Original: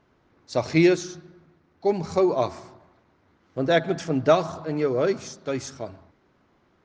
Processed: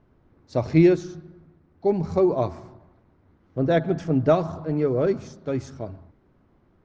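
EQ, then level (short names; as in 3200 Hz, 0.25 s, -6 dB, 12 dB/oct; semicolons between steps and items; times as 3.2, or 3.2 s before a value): tilt -3 dB/oct; -3.0 dB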